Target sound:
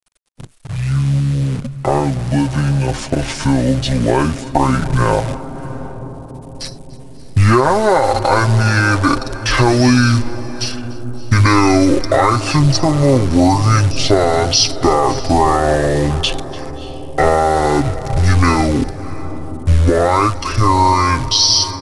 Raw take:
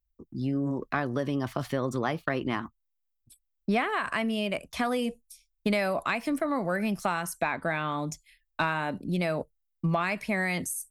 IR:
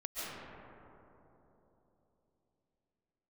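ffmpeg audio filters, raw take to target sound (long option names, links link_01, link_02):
-filter_complex "[0:a]highshelf=frequency=5300:gain=10.5,aecho=1:1:3.8:0.6,asubboost=boost=9:cutoff=83,acrusher=bits=8:dc=4:mix=0:aa=0.000001,dynaudnorm=framelen=770:gausssize=5:maxgain=5dB,asplit=2[link_01][link_02];[1:a]atrim=start_sample=2205,adelay=146[link_03];[link_02][link_03]afir=irnorm=-1:irlink=0,volume=-16.5dB[link_04];[link_01][link_04]amix=inputs=2:normalize=0,asetrate=22050,aresample=44100,alimiter=level_in=12.5dB:limit=-1dB:release=50:level=0:latency=1,volume=-1dB" -ar 44100 -c:a aac -b:a 160k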